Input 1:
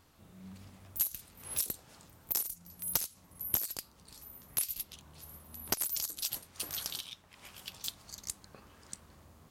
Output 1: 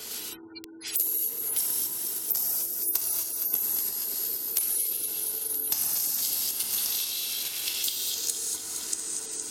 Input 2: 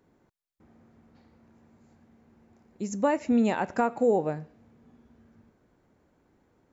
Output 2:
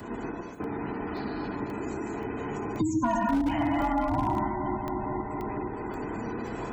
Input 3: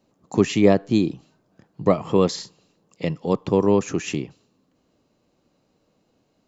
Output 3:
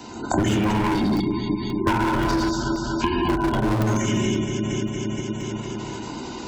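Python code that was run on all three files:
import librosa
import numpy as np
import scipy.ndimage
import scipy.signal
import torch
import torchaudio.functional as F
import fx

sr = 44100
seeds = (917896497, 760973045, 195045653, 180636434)

p1 = fx.band_invert(x, sr, width_hz=500)
p2 = scipy.signal.sosfilt(scipy.signal.butter(2, 42.0, 'highpass', fs=sr, output='sos'), p1)
p3 = fx.low_shelf(p2, sr, hz=180.0, db=-2.0)
p4 = p3 + fx.echo_alternate(p3, sr, ms=116, hz=890.0, feedback_pct=73, wet_db=-6.5, dry=0)
p5 = fx.rev_gated(p4, sr, seeds[0], gate_ms=270, shape='flat', drr_db=-3.0)
p6 = fx.level_steps(p5, sr, step_db=9)
p7 = p5 + F.gain(torch.from_numpy(p6), 0.0).numpy()
p8 = fx.spec_gate(p7, sr, threshold_db=-30, keep='strong')
p9 = np.clip(p8, -10.0 ** (-10.5 / 20.0), 10.0 ** (-10.5 / 20.0))
p10 = fx.high_shelf(p9, sr, hz=4600.0, db=8.0)
p11 = fx.hum_notches(p10, sr, base_hz=60, count=2)
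p12 = fx.buffer_crackle(p11, sr, first_s=0.64, period_s=0.53, block=64, kind='zero')
p13 = fx.band_squash(p12, sr, depth_pct=100)
y = F.gain(torch.from_numpy(p13), -7.0).numpy()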